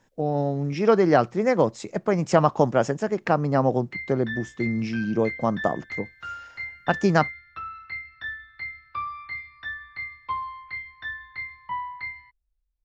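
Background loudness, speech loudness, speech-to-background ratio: -34.5 LUFS, -23.5 LUFS, 11.0 dB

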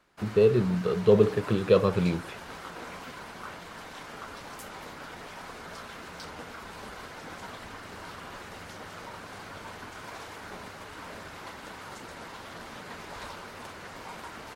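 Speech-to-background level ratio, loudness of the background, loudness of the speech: 18.0 dB, -42.0 LUFS, -24.0 LUFS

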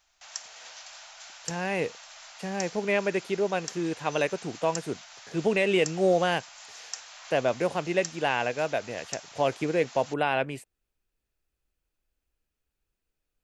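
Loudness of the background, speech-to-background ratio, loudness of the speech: -42.5 LUFS, 14.5 dB, -28.0 LUFS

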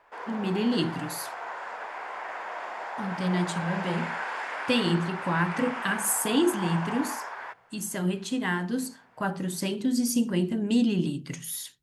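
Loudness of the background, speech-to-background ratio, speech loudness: -35.0 LUFS, 6.5 dB, -28.5 LUFS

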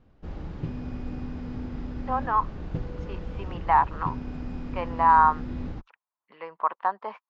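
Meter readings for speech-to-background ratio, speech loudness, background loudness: 12.5 dB, -24.0 LUFS, -36.5 LUFS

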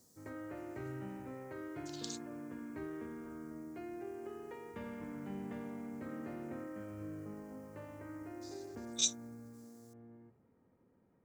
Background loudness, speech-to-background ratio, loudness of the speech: -46.5 LUFS, 9.0 dB, -37.5 LUFS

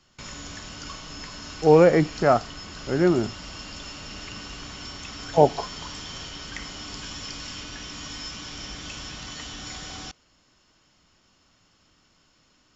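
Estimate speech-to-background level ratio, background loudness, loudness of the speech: 16.0 dB, -36.5 LUFS, -20.5 LUFS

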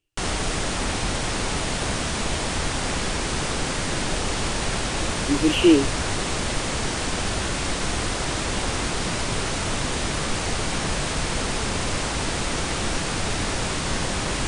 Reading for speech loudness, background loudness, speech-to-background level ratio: -19.5 LUFS, -25.5 LUFS, 6.0 dB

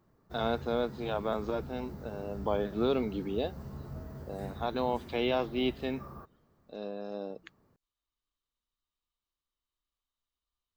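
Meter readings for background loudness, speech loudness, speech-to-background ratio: -45.0 LUFS, -34.0 LUFS, 11.0 dB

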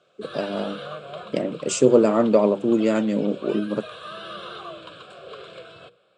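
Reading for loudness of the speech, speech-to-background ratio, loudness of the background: -21.5 LUFS, 17.0 dB, -38.5 LUFS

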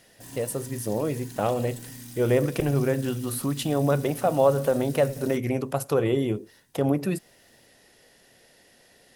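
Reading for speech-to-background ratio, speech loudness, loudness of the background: 15.5 dB, -26.0 LUFS, -41.5 LUFS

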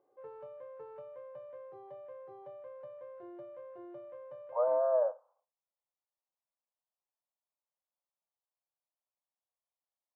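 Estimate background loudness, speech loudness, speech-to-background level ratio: -49.0 LUFS, -31.0 LUFS, 18.0 dB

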